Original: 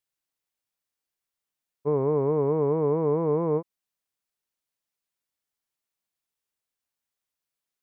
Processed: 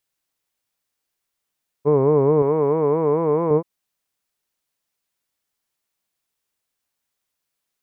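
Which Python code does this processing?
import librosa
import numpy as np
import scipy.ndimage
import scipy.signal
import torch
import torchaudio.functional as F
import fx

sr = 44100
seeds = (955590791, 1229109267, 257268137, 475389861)

y = fx.tilt_eq(x, sr, slope=2.0, at=(2.42, 3.51))
y = y * 10.0 ** (7.5 / 20.0)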